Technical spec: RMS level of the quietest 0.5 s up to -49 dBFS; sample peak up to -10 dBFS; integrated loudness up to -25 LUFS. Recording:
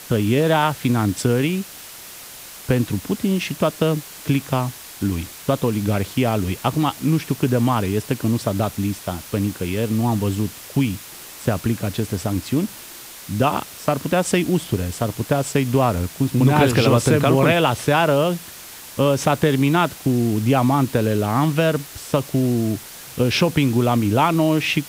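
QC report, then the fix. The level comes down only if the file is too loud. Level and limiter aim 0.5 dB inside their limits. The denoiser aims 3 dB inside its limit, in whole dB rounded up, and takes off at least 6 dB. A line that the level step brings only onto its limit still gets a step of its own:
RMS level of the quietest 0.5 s -39 dBFS: fail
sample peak -4.5 dBFS: fail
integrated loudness -20.5 LUFS: fail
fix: denoiser 8 dB, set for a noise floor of -39 dBFS; gain -5 dB; limiter -10.5 dBFS

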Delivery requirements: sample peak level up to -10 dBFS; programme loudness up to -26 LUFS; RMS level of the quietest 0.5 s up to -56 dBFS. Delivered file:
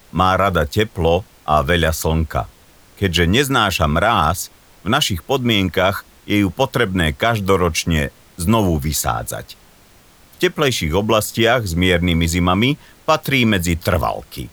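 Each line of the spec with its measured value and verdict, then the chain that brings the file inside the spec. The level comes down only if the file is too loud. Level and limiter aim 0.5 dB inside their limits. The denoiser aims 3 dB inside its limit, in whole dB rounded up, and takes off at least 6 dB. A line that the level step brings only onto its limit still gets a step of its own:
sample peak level -2.0 dBFS: fail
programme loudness -17.5 LUFS: fail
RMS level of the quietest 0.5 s -48 dBFS: fail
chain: gain -9 dB

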